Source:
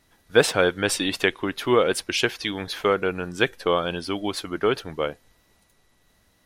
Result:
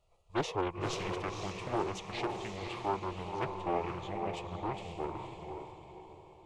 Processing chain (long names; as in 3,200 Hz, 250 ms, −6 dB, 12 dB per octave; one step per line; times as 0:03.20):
low-pass filter 2,100 Hz 6 dB per octave
parametric band 240 Hz −5 dB 1.7 octaves
in parallel at −6.5 dB: soft clipping −19.5 dBFS, distortion −10 dB
on the sum: formants moved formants −6 semitones
phaser with its sweep stopped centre 640 Hz, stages 4
on a send: feedback delay with all-pass diffusion 508 ms, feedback 44%, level −4 dB
on the sum: highs frequency-modulated by the lows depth 0.52 ms
level −7.5 dB